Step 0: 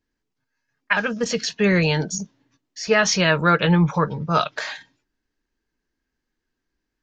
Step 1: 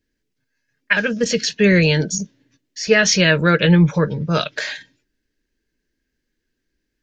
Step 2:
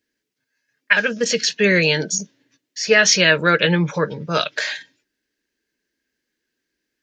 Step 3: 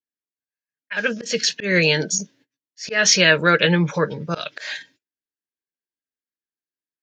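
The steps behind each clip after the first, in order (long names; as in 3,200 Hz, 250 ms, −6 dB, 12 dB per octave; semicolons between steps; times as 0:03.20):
flat-topped bell 960 Hz −10.5 dB 1.1 octaves; level +4.5 dB
high-pass filter 450 Hz 6 dB per octave; level +2 dB
noise gate −51 dBFS, range −25 dB; volume swells 170 ms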